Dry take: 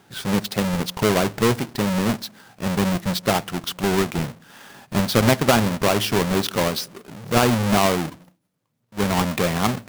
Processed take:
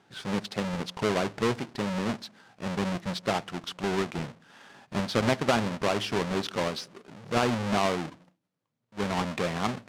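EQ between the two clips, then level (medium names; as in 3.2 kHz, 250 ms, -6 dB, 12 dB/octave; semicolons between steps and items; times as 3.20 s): distance through air 67 m; bass shelf 140 Hz -7 dB; -6.5 dB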